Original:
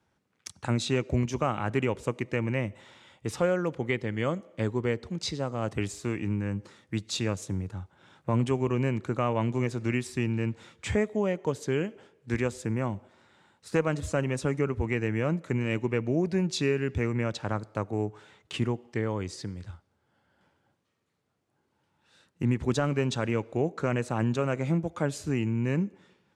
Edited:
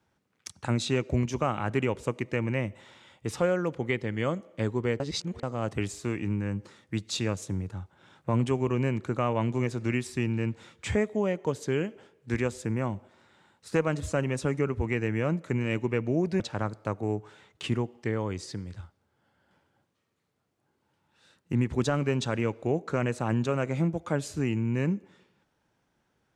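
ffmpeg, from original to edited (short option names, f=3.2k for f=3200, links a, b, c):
-filter_complex "[0:a]asplit=4[a][b][c][d];[a]atrim=end=5.002[e];[b]atrim=start=4.998:end=5.432,asetpts=PTS-STARTPTS,areverse[f];[c]atrim=start=5.428:end=16.402[g];[d]atrim=start=17.298[h];[e][f]acrossfade=d=0.004:c1=hsin:c2=hsin[i];[i][g]acrossfade=d=0.004:c1=hsin:c2=hsin[j];[j][h]acrossfade=d=0.004:c1=hsin:c2=hsin"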